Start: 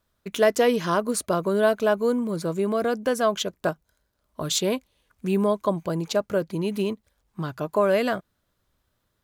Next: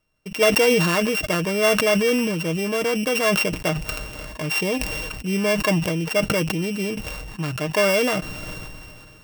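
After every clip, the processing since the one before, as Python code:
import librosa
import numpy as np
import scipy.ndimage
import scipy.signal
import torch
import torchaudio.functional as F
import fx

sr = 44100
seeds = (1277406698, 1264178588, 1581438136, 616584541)

y = np.r_[np.sort(x[:len(x) // 16 * 16].reshape(-1, 16), axis=1).ravel(), x[len(x) // 16 * 16:]]
y = y + 0.42 * np.pad(y, (int(6.5 * sr / 1000.0), 0))[:len(y)]
y = fx.sustainer(y, sr, db_per_s=25.0)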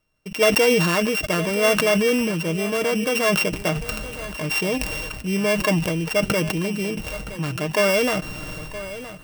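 y = x + 10.0 ** (-14.5 / 20.0) * np.pad(x, (int(969 * sr / 1000.0), 0))[:len(x)]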